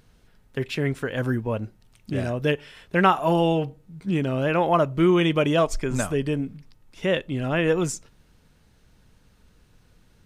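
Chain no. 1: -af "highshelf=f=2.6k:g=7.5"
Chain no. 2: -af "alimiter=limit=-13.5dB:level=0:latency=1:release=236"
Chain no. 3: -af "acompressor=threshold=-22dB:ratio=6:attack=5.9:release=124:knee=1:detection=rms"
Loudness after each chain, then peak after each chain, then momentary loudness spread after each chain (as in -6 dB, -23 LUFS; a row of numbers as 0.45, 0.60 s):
-23.0, -26.0, -29.0 LUFS; -4.5, -13.5, -14.5 dBFS; 12, 9, 9 LU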